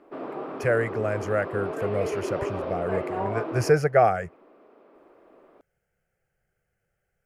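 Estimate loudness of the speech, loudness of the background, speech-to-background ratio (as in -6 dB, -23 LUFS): -26.0 LUFS, -32.5 LUFS, 6.5 dB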